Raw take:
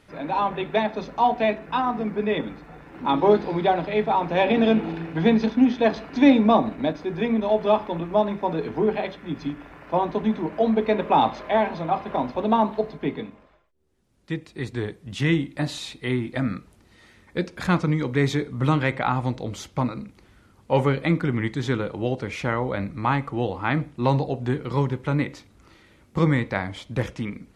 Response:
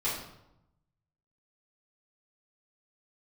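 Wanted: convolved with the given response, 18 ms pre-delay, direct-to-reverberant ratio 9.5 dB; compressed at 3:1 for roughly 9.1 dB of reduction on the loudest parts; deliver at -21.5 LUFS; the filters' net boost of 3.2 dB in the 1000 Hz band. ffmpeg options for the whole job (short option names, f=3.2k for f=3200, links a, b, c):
-filter_complex "[0:a]equalizer=f=1k:t=o:g=4,acompressor=threshold=-23dB:ratio=3,asplit=2[a][b];[1:a]atrim=start_sample=2205,adelay=18[c];[b][c]afir=irnorm=-1:irlink=0,volume=-17dB[d];[a][d]amix=inputs=2:normalize=0,volume=6dB"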